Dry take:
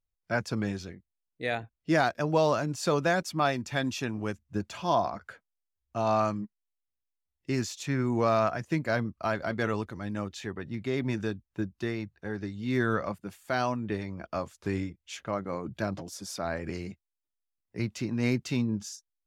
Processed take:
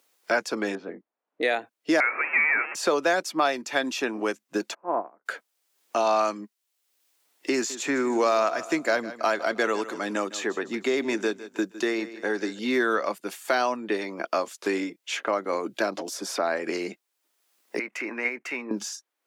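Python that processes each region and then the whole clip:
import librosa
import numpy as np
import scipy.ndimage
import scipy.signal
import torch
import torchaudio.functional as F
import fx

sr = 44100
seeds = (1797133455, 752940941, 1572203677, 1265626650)

y = fx.chain(x, sr, fx.lowpass(hz=1100.0, slope=12),
    fx.notch(hz=370.0, q=5.4), at=(0.75, 1.43))
y = fx.chain(y, sr, fx.zero_step(step_db=-28.0),
    fx.highpass(hz=770.0, slope=12),
    fx.freq_invert(carrier_hz=2900), at=(2.0, 2.75))
y = fx.spec_flatten(y, sr, power=0.66, at=(4.73, 5.25), fade=0.02)
y = fx.gaussian_blur(y, sr, sigma=6.9, at=(4.73, 5.25), fade=0.02)
y = fx.upward_expand(y, sr, threshold_db=-41.0, expansion=2.5, at=(4.73, 5.25), fade=0.02)
y = fx.chain(y, sr, fx.peak_eq(hz=7200.0, db=8.5, octaves=0.34),
    fx.echo_feedback(ms=156, feedback_pct=34, wet_db=-17.0), at=(7.54, 12.59))
y = fx.chain(y, sr, fx.high_shelf_res(hz=2900.0, db=-9.0, q=3.0),
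    fx.level_steps(step_db=12),
    fx.highpass(hz=830.0, slope=6), at=(17.79, 18.71))
y = scipy.signal.sosfilt(scipy.signal.butter(4, 300.0, 'highpass', fs=sr, output='sos'), y)
y = fx.band_squash(y, sr, depth_pct=70)
y = F.gain(torch.from_numpy(y), 6.5).numpy()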